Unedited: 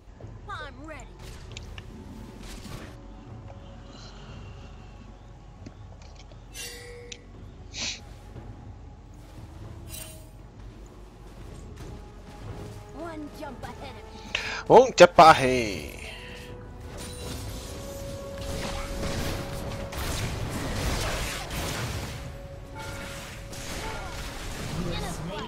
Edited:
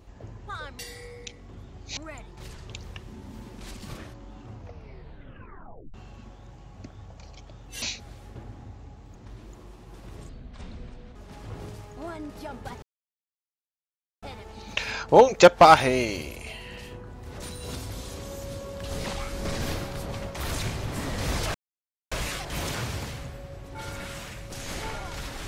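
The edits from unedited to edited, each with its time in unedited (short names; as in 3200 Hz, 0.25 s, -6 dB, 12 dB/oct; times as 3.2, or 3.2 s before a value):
3.34 tape stop 1.42 s
6.64–7.82 move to 0.79
9.15–10.48 cut
11.62–12.13 speed 59%
13.8 insert silence 1.40 s
21.12 insert silence 0.57 s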